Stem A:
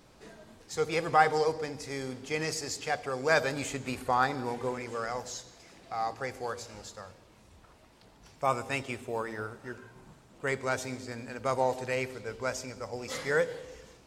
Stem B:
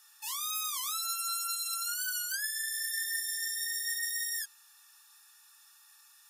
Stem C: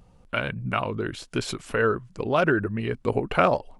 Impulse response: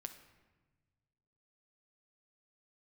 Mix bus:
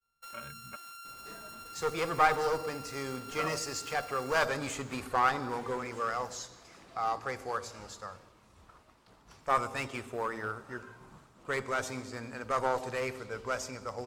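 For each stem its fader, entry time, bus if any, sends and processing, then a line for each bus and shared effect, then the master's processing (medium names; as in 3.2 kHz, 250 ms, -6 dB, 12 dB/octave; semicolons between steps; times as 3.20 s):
-1.5 dB, 1.05 s, no send, one-sided clip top -29 dBFS
-8.5 dB, 0.00 s, no send, sorted samples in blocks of 32 samples; compression 10:1, threshold -38 dBFS, peak gain reduction 9.5 dB
-13.5 dB, 0.00 s, muted 0.76–3.29 s, no send, inharmonic resonator 68 Hz, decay 0.27 s, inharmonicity 0.03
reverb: none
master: expander -56 dBFS; peaking EQ 1.2 kHz +8 dB 0.58 oct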